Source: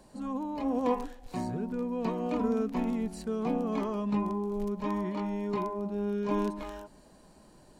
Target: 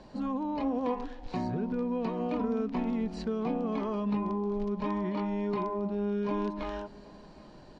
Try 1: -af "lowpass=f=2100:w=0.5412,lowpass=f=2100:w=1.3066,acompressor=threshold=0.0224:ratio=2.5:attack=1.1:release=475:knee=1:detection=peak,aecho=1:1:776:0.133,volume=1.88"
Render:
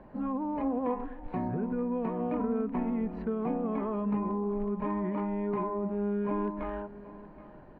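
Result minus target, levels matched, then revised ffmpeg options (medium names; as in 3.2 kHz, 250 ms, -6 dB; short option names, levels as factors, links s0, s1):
4 kHz band -15.5 dB; echo-to-direct +7 dB
-af "lowpass=f=5100:w=0.5412,lowpass=f=5100:w=1.3066,acompressor=threshold=0.0224:ratio=2.5:attack=1.1:release=475:knee=1:detection=peak,aecho=1:1:776:0.0596,volume=1.88"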